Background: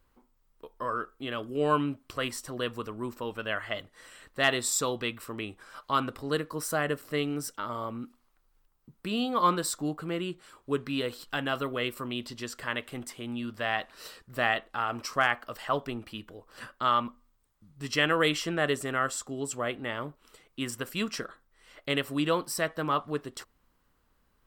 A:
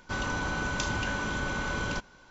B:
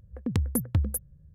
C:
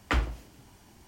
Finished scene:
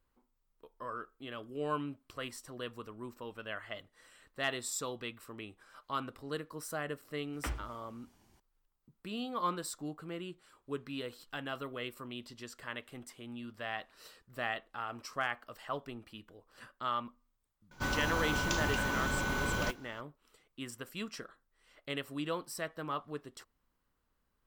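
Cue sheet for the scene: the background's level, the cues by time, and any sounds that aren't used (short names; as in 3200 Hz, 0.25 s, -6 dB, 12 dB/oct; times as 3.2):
background -9.5 dB
7.33 add C -11.5 dB
17.71 add A -2 dB + modulation noise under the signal 19 dB
not used: B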